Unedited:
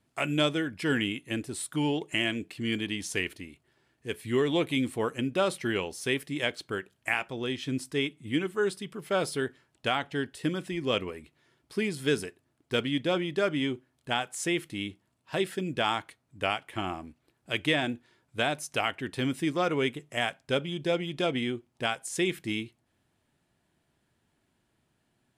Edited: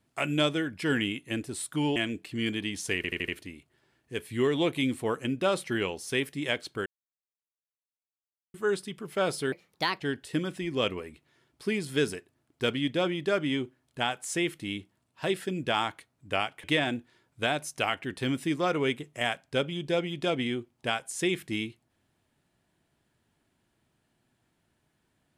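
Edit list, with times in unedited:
1.96–2.22 s: delete
3.22 s: stutter 0.08 s, 5 plays
6.80–8.48 s: mute
9.46–10.10 s: speed 134%
16.74–17.60 s: delete

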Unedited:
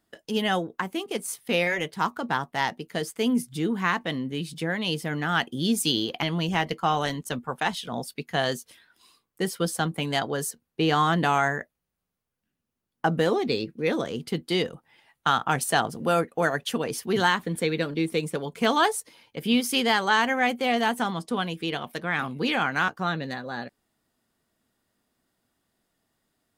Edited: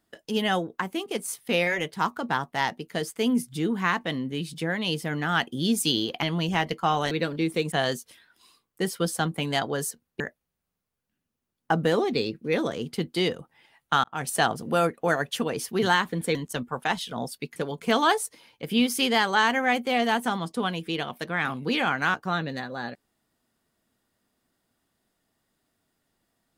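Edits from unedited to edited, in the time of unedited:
7.11–8.32 s: swap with 17.69–18.30 s
10.80–11.54 s: delete
15.38–15.71 s: fade in

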